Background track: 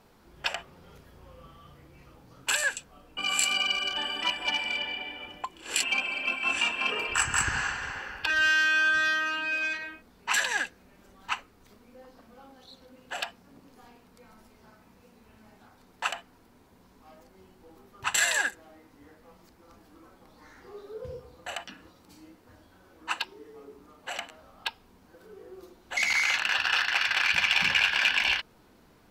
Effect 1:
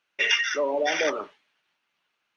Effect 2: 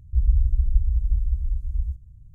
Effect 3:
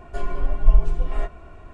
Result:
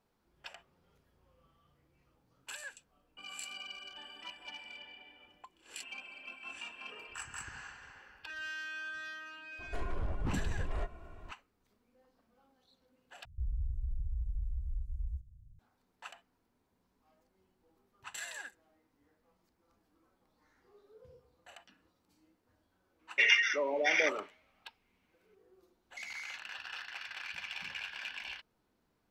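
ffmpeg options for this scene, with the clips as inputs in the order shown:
ffmpeg -i bed.wav -i cue0.wav -i cue1.wav -i cue2.wav -filter_complex "[0:a]volume=-18.5dB[link_01];[3:a]aeval=exprs='0.106*(abs(mod(val(0)/0.106+3,4)-2)-1)':channel_layout=same[link_02];[2:a]alimiter=limit=-19dB:level=0:latency=1:release=38[link_03];[1:a]equalizer=frequency=2200:width=4.1:gain=11.5[link_04];[link_01]asplit=2[link_05][link_06];[link_05]atrim=end=13.254[link_07];[link_03]atrim=end=2.34,asetpts=PTS-STARTPTS,volume=-11dB[link_08];[link_06]atrim=start=15.586[link_09];[link_02]atrim=end=1.73,asetpts=PTS-STARTPTS,volume=-8.5dB,afade=type=in:duration=0.004:curve=hsin,afade=type=out:start_time=1.726:duration=0.004:curve=hsin,adelay=9590[link_10];[link_04]atrim=end=2.36,asetpts=PTS-STARTPTS,volume=-7.5dB,afade=type=in:duration=0.004:curve=hsin,afade=type=out:start_time=2.356:duration=0.004:curve=hsin,adelay=22990[link_11];[link_07][link_08]acrossfade=duration=0.004:curve1=hsin:curve2=hsin[link_12];[link_12][link_09]acrossfade=duration=0.004:curve1=hsin:curve2=hsin[link_13];[link_13][link_10][link_11]amix=inputs=3:normalize=0" out.wav

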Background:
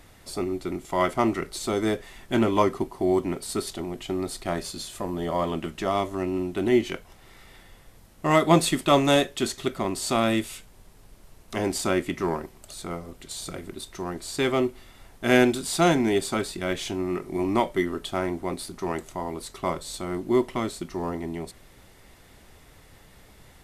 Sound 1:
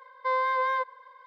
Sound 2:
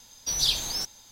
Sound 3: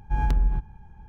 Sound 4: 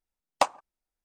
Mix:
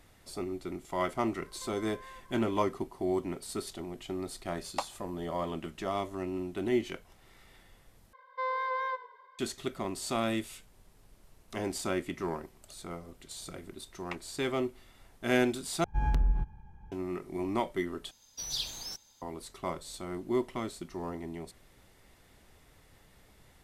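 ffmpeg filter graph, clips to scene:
ffmpeg -i bed.wav -i cue0.wav -i cue1.wav -i cue2.wav -i cue3.wav -filter_complex "[1:a]asplit=2[link_01][link_02];[4:a]asplit=2[link_03][link_04];[0:a]volume=-8dB[link_05];[link_01]acompressor=threshold=-40dB:ratio=6:attack=3.2:release=140:knee=1:detection=peak[link_06];[link_02]asplit=4[link_07][link_08][link_09][link_10];[link_08]adelay=103,afreqshift=-39,volume=-16.5dB[link_11];[link_09]adelay=206,afreqshift=-78,volume=-26.7dB[link_12];[link_10]adelay=309,afreqshift=-117,volume=-36.8dB[link_13];[link_07][link_11][link_12][link_13]amix=inputs=4:normalize=0[link_14];[link_04]bandpass=frequency=2200:width_type=q:width=3.7:csg=0[link_15];[link_05]asplit=4[link_16][link_17][link_18][link_19];[link_16]atrim=end=8.134[link_20];[link_14]atrim=end=1.26,asetpts=PTS-STARTPTS,volume=-6.5dB[link_21];[link_17]atrim=start=9.386:end=15.844[link_22];[3:a]atrim=end=1.08,asetpts=PTS-STARTPTS,volume=-5dB[link_23];[link_18]atrim=start=16.916:end=18.114[link_24];[2:a]atrim=end=1.11,asetpts=PTS-STARTPTS,volume=-10.5dB[link_25];[link_19]atrim=start=19.216[link_26];[link_06]atrim=end=1.26,asetpts=PTS-STARTPTS,volume=-8.5dB,afade=type=in:duration=0.004:curve=hsin,afade=type=out:start_time=1.256:duration=0.004:curve=hsin,adelay=1370[link_27];[link_03]atrim=end=1.04,asetpts=PTS-STARTPTS,volume=-11dB,afade=type=in:duration=0.004:curve=hsin,afade=type=out:start_time=1.036:duration=0.004:curve=hsin,adelay=192717S[link_28];[link_15]atrim=end=1.04,asetpts=PTS-STARTPTS,volume=-5.5dB,afade=type=in:duration=0.004:curve=hsin,afade=type=out:start_time=1.036:duration=0.004:curve=hsin,adelay=13700[link_29];[link_20][link_21]acrossfade=duration=0.004:curve1=hsin:curve2=hsin[link_30];[link_30][link_22]acrossfade=duration=0.004:curve1=hsin:curve2=hsin[link_31];[link_31][link_23]acrossfade=duration=0.004:curve1=hsin:curve2=hsin[link_32];[link_32][link_24]acrossfade=duration=0.004:curve1=hsin:curve2=hsin[link_33];[link_33][link_25]acrossfade=duration=0.004:curve1=hsin:curve2=hsin[link_34];[link_34][link_26]acrossfade=duration=0.004:curve1=hsin:curve2=hsin[link_35];[link_35][link_27][link_28][link_29]amix=inputs=4:normalize=0" out.wav

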